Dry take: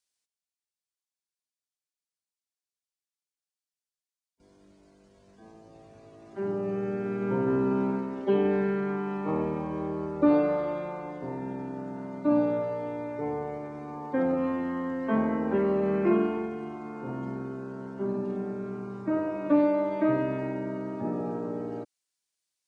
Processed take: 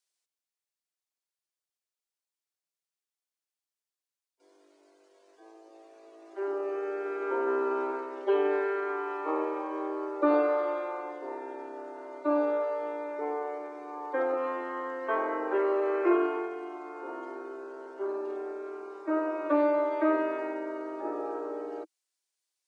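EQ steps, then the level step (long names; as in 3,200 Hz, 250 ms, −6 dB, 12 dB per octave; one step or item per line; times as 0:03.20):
elliptic high-pass filter 320 Hz, stop band 40 dB
dynamic equaliser 1,300 Hz, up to +6 dB, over −48 dBFS, Q 1.8
0.0 dB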